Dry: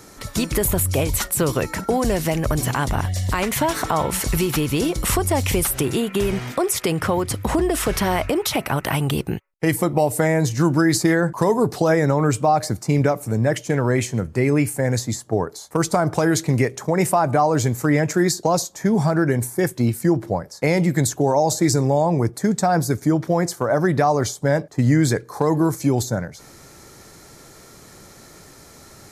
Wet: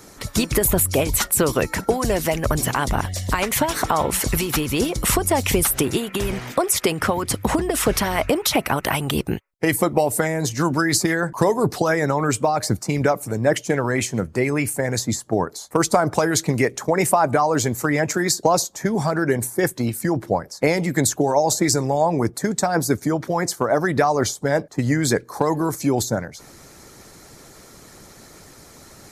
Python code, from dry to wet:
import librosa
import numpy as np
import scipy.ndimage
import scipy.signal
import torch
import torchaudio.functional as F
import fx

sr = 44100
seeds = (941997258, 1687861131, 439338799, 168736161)

y = fx.hpss(x, sr, part='percussive', gain_db=9)
y = F.gain(torch.from_numpy(y), -5.5).numpy()